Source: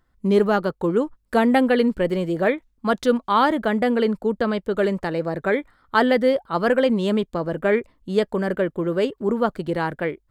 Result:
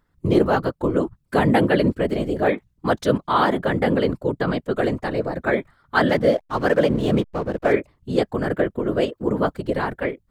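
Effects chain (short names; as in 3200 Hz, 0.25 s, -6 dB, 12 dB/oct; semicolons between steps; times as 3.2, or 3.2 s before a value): whisperiser; 6.09–7.73 backlash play -33.5 dBFS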